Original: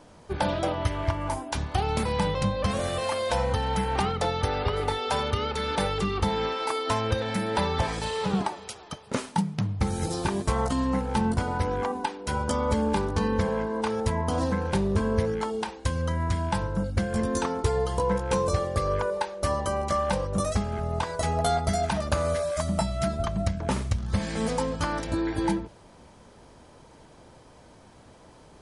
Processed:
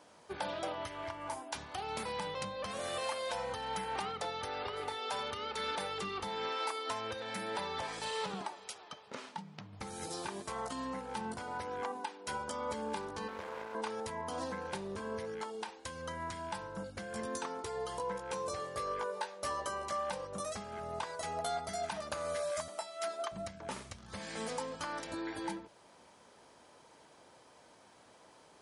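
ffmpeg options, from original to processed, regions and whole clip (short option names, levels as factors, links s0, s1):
-filter_complex "[0:a]asettb=1/sr,asplit=3[s0][s1][s2];[s0]atrim=end=8.784[s3];[s1]atrim=start=8.78:end=9.73,asetpts=PTS-STARTPTS,afade=t=in:d=0.004:c=qsin,afade=t=out:st=0.946:d=0.004:c=qsin,lowpass=5000,acompressor=threshold=0.0158:ratio=2:attack=3.2:release=140:knee=1:detection=peak[s4];[s2]atrim=start=9.726[s5];[s3][s4]acrossfade=d=0.004:c1=hsin:c2=qsin[s6];[s6][s5]acrossfade=d=0.004:c1=qsin:c2=hsin,asettb=1/sr,asplit=3[s7][s8][s9];[s7]atrim=end=13.284[s10];[s8]atrim=start=13.28:end=13.75,asetpts=PTS-STARTPTS,afade=t=in:d=0.004:c=qsin,afade=t=out:st=0.466:d=0.004:c=qsin,acrossover=split=3300[s11][s12];[s12]acompressor=threshold=0.00251:ratio=4:attack=1:release=60[s13];[s11][s13]amix=inputs=2:normalize=0,equalizer=f=160:w=1.1:g=-8,aeval=exprs='max(val(0),0)':c=same[s14];[s9]atrim=start=13.746[s15];[s10][s14]acrossfade=d=0.004:c1=hsin:c2=qsin[s16];[s16][s15]acrossfade=d=0.004:c1=qsin:c2=hsin,asettb=1/sr,asplit=3[s17][s18][s19];[s17]atrim=end=18.574[s20];[s18]atrim=start=18.57:end=19.89,asetpts=PTS-STARTPTS,afade=t=in:d=0.004:c=qsin,afade=t=out:st=1.316:d=0.004:c=qsin,asplit=2[s21][s22];[s22]adelay=16,volume=0.631[s23];[s21][s23]amix=inputs=2:normalize=0,atrim=end_sample=58212,volume=5.62,asoftclip=hard,volume=0.178[s24];[s19]atrim=start=19.886[s25];[s20][s24]acrossfade=d=0.004:c1=hsin:c2=qsin[s26];[s26][s25]acrossfade=d=0.004:c1=qsin:c2=hsin,asettb=1/sr,asplit=3[s27][s28][s29];[s27]atrim=end=22.684[s30];[s28]atrim=start=22.68:end=23.32,asetpts=PTS-STARTPTS,afade=t=in:d=0.004:c=qsin,afade=t=out:st=0.636:d=0.004:c=qsin,highpass=f=350:w=0.5412,highpass=f=350:w=1.3066,aeval=exprs='val(0)+0.000631*(sin(2*PI*50*n/s)+sin(2*PI*2*50*n/s)/2+sin(2*PI*3*50*n/s)/3+sin(2*PI*4*50*n/s)/4+sin(2*PI*5*50*n/s)/5)':c=same[s31];[s29]atrim=start=23.316[s32];[s30][s31]acrossfade=d=0.004:c1=hsin:c2=qsin[s33];[s33][s32]acrossfade=d=0.004:c1=qsin:c2=hsin,alimiter=limit=0.106:level=0:latency=1:release=372,highpass=f=620:p=1,volume=0.631"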